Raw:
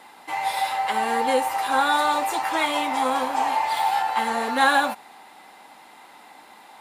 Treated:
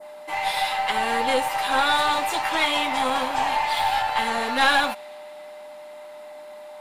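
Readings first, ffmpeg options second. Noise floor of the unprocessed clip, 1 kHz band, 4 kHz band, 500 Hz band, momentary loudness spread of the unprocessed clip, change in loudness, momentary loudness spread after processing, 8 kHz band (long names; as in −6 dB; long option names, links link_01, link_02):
−49 dBFS, −1.0 dB, +4.5 dB, −0.5 dB, 6 LU, +0.5 dB, 21 LU, 0.0 dB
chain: -af "aeval=exprs='val(0)+0.0141*sin(2*PI*600*n/s)':channel_layout=same,aeval=exprs='(tanh(3.98*val(0)+0.4)-tanh(0.4))/3.98':channel_layout=same,adynamicequalizer=threshold=0.01:dfrequency=3100:dqfactor=0.8:tfrequency=3100:tqfactor=0.8:attack=5:release=100:ratio=0.375:range=3.5:mode=boostabove:tftype=bell"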